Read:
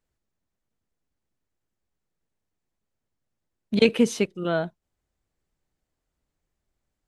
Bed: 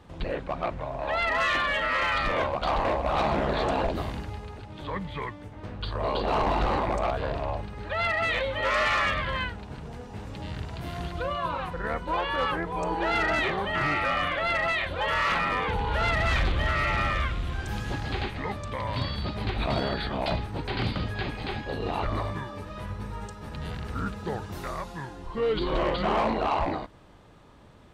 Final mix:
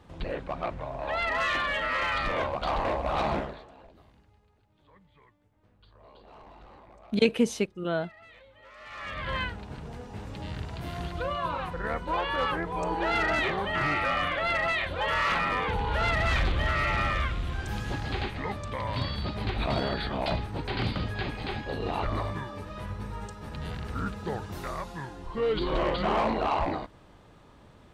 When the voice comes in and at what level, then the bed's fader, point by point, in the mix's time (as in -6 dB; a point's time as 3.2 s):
3.40 s, -4.0 dB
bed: 3.37 s -2.5 dB
3.67 s -26 dB
8.76 s -26 dB
9.32 s -1 dB